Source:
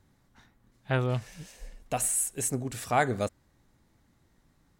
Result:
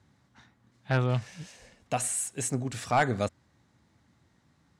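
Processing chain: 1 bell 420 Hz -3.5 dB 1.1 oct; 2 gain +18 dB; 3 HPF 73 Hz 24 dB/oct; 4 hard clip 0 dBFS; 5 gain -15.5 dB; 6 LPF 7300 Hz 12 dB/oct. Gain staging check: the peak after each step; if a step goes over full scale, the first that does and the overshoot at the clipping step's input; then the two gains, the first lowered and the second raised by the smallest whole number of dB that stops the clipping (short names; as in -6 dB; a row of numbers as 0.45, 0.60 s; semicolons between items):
-11.5, +6.5, +7.5, 0.0, -15.5, -15.0 dBFS; step 2, 7.5 dB; step 2 +10 dB, step 5 -7.5 dB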